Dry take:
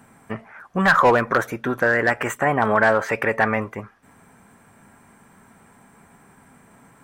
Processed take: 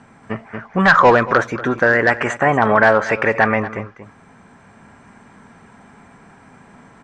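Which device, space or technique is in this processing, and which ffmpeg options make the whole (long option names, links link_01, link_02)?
ducked delay: -filter_complex "[0:a]asplit=3[link_01][link_02][link_03];[link_02]adelay=233,volume=-2.5dB[link_04];[link_03]apad=whole_len=320665[link_05];[link_04][link_05]sidechaincompress=threshold=-28dB:ratio=8:attack=42:release=1390[link_06];[link_01][link_06]amix=inputs=2:normalize=0,lowpass=frequency=6500:width=0.5412,lowpass=frequency=6500:width=1.3066,volume=4.5dB"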